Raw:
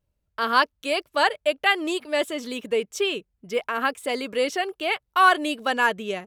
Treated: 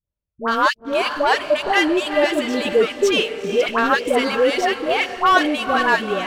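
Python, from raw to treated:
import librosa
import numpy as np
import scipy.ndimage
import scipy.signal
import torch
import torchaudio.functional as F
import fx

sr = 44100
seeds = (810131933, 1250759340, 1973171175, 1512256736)

y = fx.rider(x, sr, range_db=10, speed_s=2.0)
y = fx.echo_diffused(y, sr, ms=454, feedback_pct=47, wet_db=-12.0)
y = fx.leveller(y, sr, passes=3)
y = fx.high_shelf(y, sr, hz=6300.0, db=-11.5)
y = fx.dispersion(y, sr, late='highs', ms=101.0, hz=750.0)
y = F.gain(torch.from_numpy(y), -3.5).numpy()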